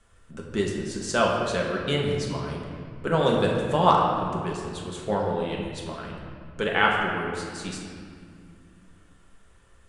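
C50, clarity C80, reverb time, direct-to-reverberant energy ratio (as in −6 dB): 1.5 dB, 3.0 dB, 2.2 s, −2.5 dB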